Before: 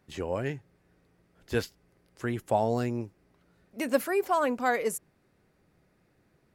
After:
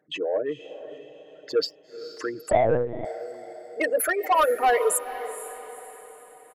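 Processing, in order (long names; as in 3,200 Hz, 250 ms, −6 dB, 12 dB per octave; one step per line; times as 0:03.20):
spectral envelope exaggerated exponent 3
high-pass filter 620 Hz 12 dB per octave
comb filter 6.5 ms, depth 66%
in parallel at −1 dB: brickwall limiter −22 dBFS, peak gain reduction 7 dB
on the sum: soft clipping −20.5 dBFS, distortion −13 dB
on a send: feedback delay with all-pass diffusion 470 ms, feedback 46%, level −13 dB
0:02.51–0:03.05: on the sum: linear-prediction vocoder at 8 kHz pitch kept
level +6 dB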